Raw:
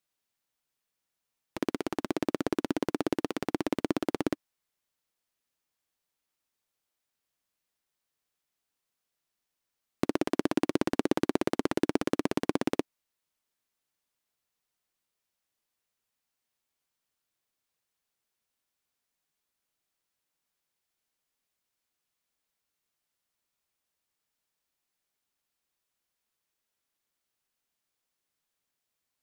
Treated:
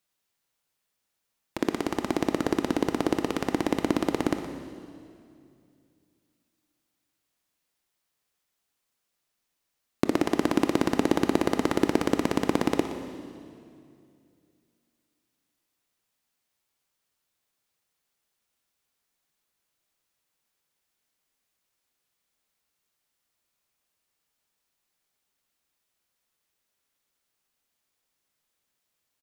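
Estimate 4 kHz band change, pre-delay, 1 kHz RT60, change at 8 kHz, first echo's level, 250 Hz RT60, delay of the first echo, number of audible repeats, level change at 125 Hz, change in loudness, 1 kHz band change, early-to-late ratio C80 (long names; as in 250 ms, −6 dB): +4.5 dB, 20 ms, 2.2 s, +5.0 dB, −13.0 dB, 2.8 s, 119 ms, 1, +5.5 dB, +4.0 dB, +5.5 dB, 7.5 dB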